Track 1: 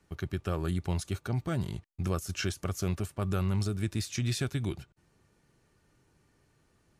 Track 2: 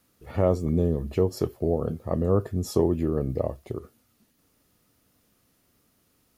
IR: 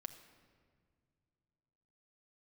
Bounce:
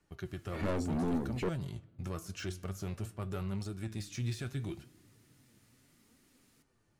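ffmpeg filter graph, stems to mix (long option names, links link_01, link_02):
-filter_complex "[0:a]deesser=0.85,flanger=delay=6.7:depth=4.5:regen=85:speed=0.58:shape=triangular,volume=1dB,asplit=2[link_01][link_02];[link_02]volume=-7dB[link_03];[1:a]equalizer=frequency=250:width_type=o:width=1:gain=12,equalizer=frequency=2000:width_type=o:width=1:gain=10,equalizer=frequency=4000:width_type=o:width=1:gain=5,equalizer=frequency=8000:width_type=o:width=1:gain=10,adelay=250,volume=-4dB,asplit=3[link_04][link_05][link_06];[link_04]atrim=end=1.49,asetpts=PTS-STARTPTS,afade=type=out:start_time=1.486:duration=0.004:curve=hsin[link_07];[link_05]atrim=start=1.49:end=4.14,asetpts=PTS-STARTPTS,volume=0[link_08];[link_06]atrim=start=4.14,asetpts=PTS-STARTPTS,afade=type=in:duration=0.004:curve=hsin[link_09];[link_07][link_08][link_09]concat=n=3:v=0:a=1[link_10];[2:a]atrim=start_sample=2205[link_11];[link_03][link_11]afir=irnorm=-1:irlink=0[link_12];[link_01][link_10][link_12]amix=inputs=3:normalize=0,asoftclip=type=tanh:threshold=-24.5dB,flanger=delay=2.7:depth=7:regen=62:speed=0.8:shape=triangular"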